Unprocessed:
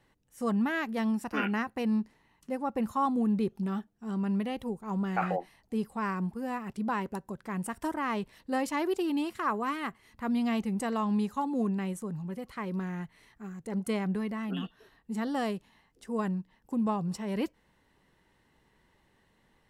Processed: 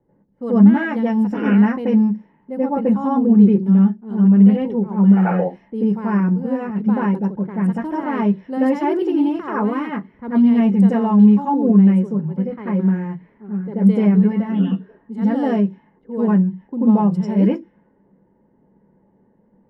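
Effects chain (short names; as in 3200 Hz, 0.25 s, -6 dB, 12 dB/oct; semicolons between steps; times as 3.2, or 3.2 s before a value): low-pass opened by the level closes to 800 Hz, open at -29.5 dBFS; reverb RT60 0.15 s, pre-delay 83 ms, DRR -8 dB; gain -10.5 dB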